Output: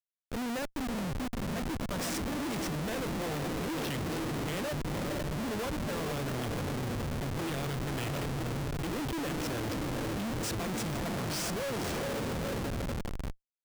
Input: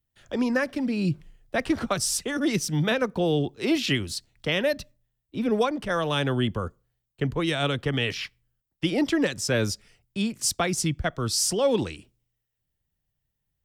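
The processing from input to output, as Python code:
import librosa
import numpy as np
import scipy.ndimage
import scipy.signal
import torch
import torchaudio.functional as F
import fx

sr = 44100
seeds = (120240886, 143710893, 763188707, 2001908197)

y = fx.echo_diffused(x, sr, ms=473, feedback_pct=68, wet_db=-5.0)
y = fx.schmitt(y, sr, flips_db=-26.5)
y = y * 10.0 ** (-8.5 / 20.0)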